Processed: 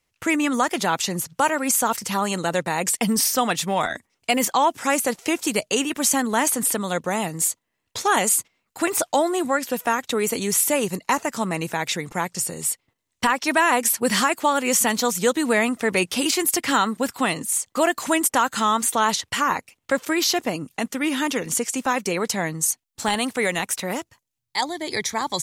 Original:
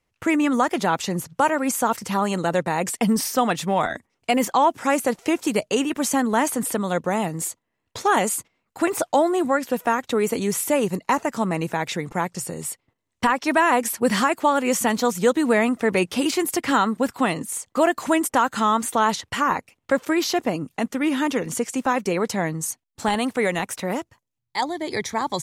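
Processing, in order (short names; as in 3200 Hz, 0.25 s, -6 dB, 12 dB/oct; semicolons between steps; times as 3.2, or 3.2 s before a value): high shelf 2100 Hz +9.5 dB; gain -2.5 dB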